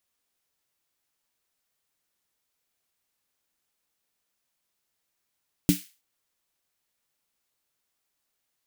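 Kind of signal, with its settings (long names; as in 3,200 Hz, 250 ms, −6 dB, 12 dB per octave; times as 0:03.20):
synth snare length 0.32 s, tones 180 Hz, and 290 Hz, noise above 2,000 Hz, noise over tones −11 dB, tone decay 0.15 s, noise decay 0.35 s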